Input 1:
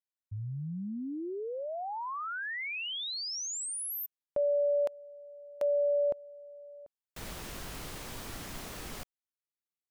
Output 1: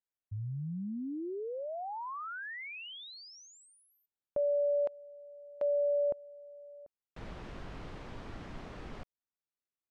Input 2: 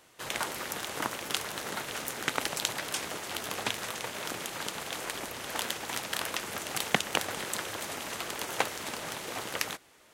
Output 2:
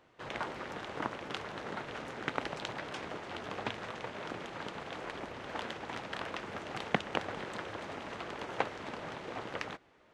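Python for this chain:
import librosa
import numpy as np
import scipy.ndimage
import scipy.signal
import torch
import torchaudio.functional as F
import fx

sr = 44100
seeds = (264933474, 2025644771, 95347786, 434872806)

y = fx.spacing_loss(x, sr, db_at_10k=30)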